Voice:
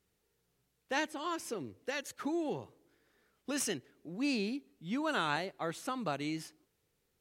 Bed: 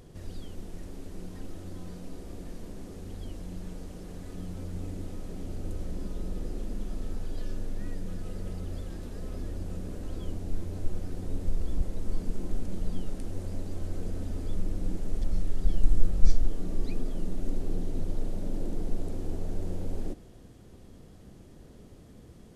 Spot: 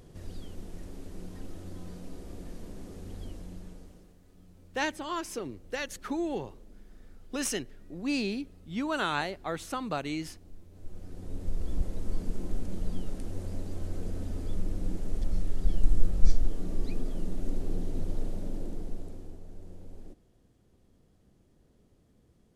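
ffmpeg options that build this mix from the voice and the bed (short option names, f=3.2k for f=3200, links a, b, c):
-filter_complex "[0:a]adelay=3850,volume=3dB[a];[1:a]volume=15.5dB,afade=t=out:st=3.22:d=0.94:silence=0.149624,afade=t=in:st=10.71:d=1.08:silence=0.141254,afade=t=out:st=18.22:d=1.18:silence=0.237137[b];[a][b]amix=inputs=2:normalize=0"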